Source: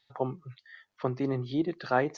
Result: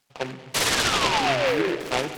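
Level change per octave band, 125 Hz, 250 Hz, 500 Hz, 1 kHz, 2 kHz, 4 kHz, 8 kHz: 0.0 dB, +1.5 dB, +6.5 dB, +9.0 dB, +14.0 dB, +25.0 dB, can't be measured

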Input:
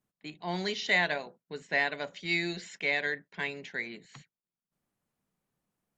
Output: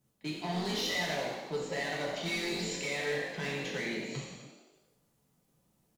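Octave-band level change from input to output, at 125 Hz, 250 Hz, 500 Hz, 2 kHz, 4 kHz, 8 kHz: +3.0, +2.0, +1.0, −6.0, +0.5, +8.0 decibels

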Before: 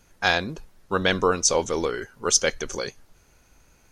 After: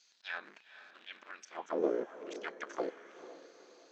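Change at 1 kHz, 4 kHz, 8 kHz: −17.0, −25.0, −35.0 decibels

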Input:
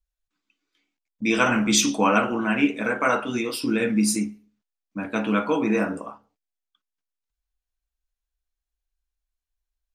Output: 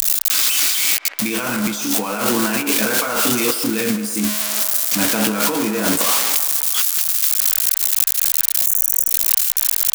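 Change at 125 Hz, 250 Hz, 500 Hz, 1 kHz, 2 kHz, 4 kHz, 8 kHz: +2.0, +1.5, +2.0, +1.5, +4.0, +11.0, +14.0 decibels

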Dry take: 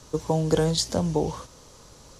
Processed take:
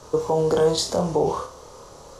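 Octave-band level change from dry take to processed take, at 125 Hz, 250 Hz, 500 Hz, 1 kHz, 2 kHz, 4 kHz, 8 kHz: −3.0, −1.5, +6.0, +6.0, +1.0, +1.0, +0.5 decibels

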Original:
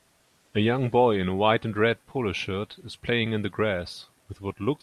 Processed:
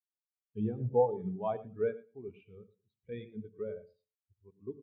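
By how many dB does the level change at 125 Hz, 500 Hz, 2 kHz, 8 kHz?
−11.5 dB, −8.5 dB, −26.5 dB, below −30 dB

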